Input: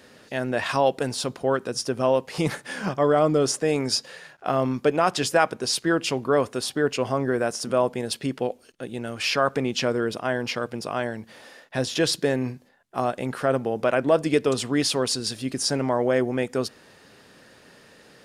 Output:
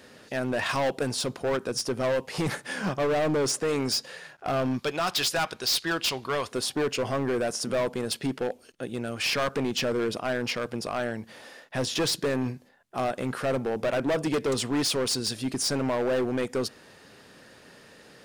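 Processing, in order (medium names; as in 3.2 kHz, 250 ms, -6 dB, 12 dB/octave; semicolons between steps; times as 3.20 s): 4.79–6.52 s: graphic EQ 125/250/500/4000 Hz -6/-8/-6/+10 dB; hard clipper -22.5 dBFS, distortion -7 dB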